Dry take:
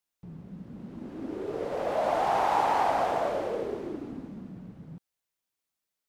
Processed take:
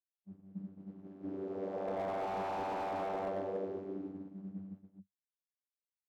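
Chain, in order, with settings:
channel vocoder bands 32, saw 96.6 Hz
downward expander −33 dBFS
slew-rate limiting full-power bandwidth 29 Hz
level −6.5 dB

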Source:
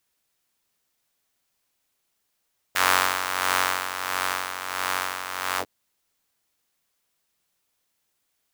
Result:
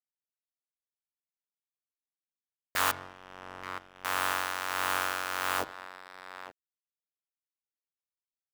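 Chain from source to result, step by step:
0:02.91–0:04.05: resonant band-pass 110 Hz, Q 1.2
slap from a distant wall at 150 metres, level −14 dB
soft clipping −15 dBFS, distortion −9 dB
spring reverb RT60 1 s, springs 37 ms, chirp 60 ms, DRR 14.5 dB
dead-zone distortion −47 dBFS
upward compression, threshold −36 dBFS

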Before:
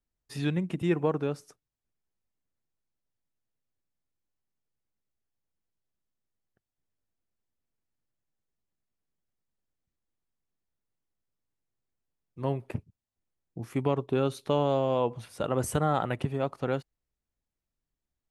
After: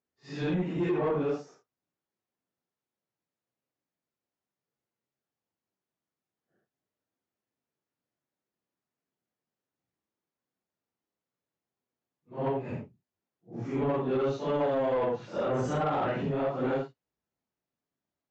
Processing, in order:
random phases in long frames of 200 ms
Bessel high-pass filter 220 Hz, order 2
high-shelf EQ 2,300 Hz −11 dB
brickwall limiter −23.5 dBFS, peak gain reduction 7 dB
soft clipping −28 dBFS, distortion −16 dB
downsampling to 16,000 Hz
level +6 dB

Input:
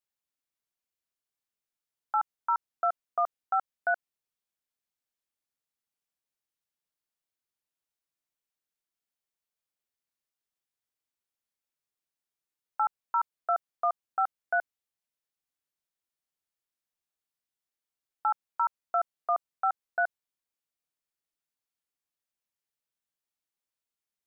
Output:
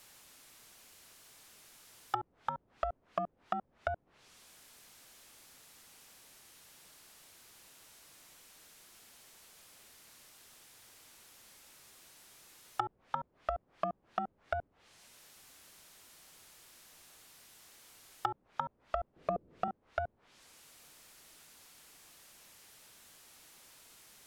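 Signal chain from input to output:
0:19.16–0:19.68: low shelf with overshoot 610 Hz +9.5 dB, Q 1.5
power curve on the samples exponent 0.5
treble cut that deepens with the level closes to 410 Hz, closed at −26.5 dBFS
level −1 dB

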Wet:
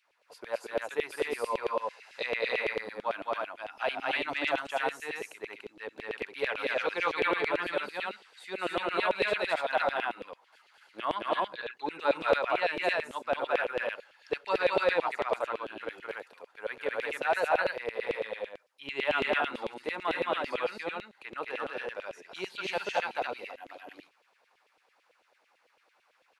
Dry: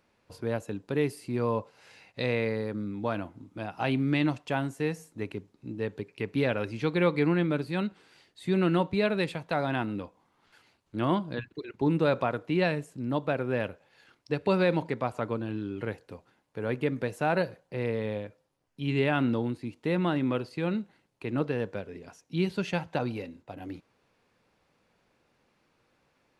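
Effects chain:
loudspeakers that aren't time-aligned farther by 74 metres −1 dB, 99 metres −1 dB
auto-filter high-pass saw down 9 Hz 460–3,000 Hz
level −3.5 dB

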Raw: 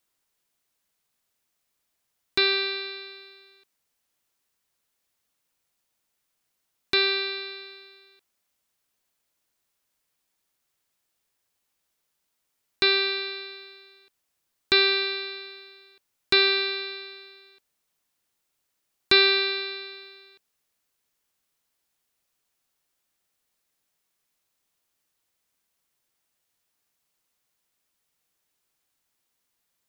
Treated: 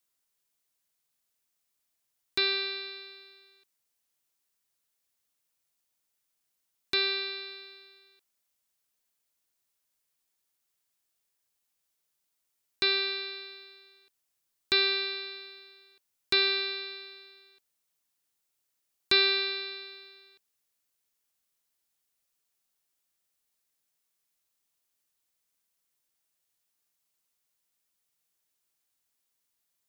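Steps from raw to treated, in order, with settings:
high-shelf EQ 4,000 Hz +6.5 dB
level −7.5 dB

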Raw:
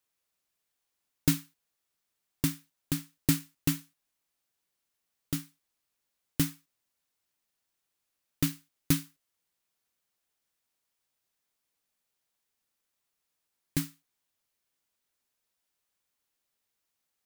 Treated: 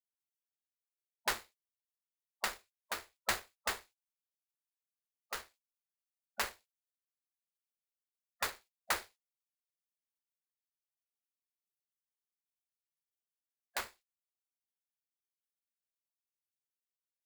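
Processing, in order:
running median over 15 samples
gate on every frequency bin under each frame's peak −25 dB weak
level +10 dB

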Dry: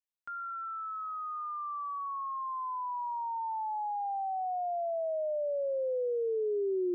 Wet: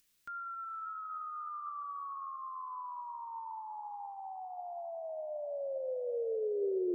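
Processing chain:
parametric band 770 Hz −12.5 dB 1.4 octaves
upward compression, threshold −58 dBFS
feedback delay with all-pass diffusion 521 ms, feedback 41%, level −10.5 dB
on a send at −15.5 dB: convolution reverb RT60 1.8 s, pre-delay 3 ms
on the sum: level +2 dB

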